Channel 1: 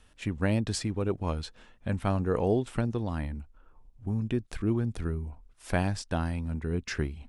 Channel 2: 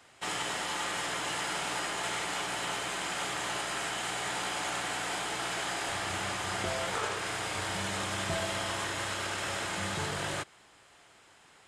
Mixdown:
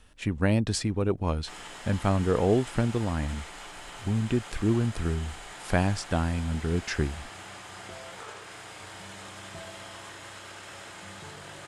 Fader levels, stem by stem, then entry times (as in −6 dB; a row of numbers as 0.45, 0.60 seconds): +3.0, −9.5 decibels; 0.00, 1.25 seconds